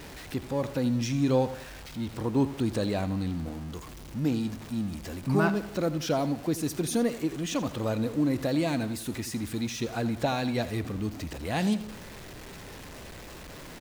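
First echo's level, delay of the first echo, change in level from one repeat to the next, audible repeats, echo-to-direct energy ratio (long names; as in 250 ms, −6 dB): −14.5 dB, 84 ms, repeats not evenly spaced, 2, −13.5 dB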